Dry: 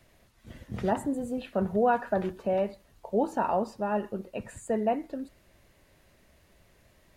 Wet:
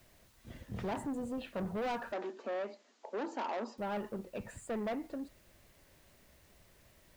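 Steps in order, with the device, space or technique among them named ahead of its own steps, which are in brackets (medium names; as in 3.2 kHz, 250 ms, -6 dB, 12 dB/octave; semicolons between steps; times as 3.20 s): compact cassette (saturation -30 dBFS, distortion -7 dB; low-pass 8.1 kHz; wow and flutter; white noise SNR 29 dB); 2.12–3.78 s: Chebyshev band-pass 230–7200 Hz, order 5; trim -3 dB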